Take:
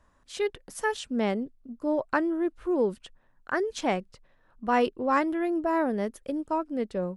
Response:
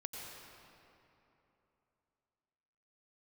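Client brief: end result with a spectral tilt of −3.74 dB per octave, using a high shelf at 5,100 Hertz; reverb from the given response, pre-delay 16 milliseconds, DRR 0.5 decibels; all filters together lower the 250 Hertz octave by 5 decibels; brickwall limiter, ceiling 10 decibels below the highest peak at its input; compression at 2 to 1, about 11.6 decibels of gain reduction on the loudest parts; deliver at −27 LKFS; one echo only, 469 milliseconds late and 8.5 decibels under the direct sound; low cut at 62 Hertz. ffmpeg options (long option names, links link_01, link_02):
-filter_complex "[0:a]highpass=62,equalizer=frequency=250:width_type=o:gain=-7,highshelf=frequency=5100:gain=-7.5,acompressor=threshold=-43dB:ratio=2,alimiter=level_in=7dB:limit=-24dB:level=0:latency=1,volume=-7dB,aecho=1:1:469:0.376,asplit=2[link_01][link_02];[1:a]atrim=start_sample=2205,adelay=16[link_03];[link_02][link_03]afir=irnorm=-1:irlink=0,volume=0.5dB[link_04];[link_01][link_04]amix=inputs=2:normalize=0,volume=12.5dB"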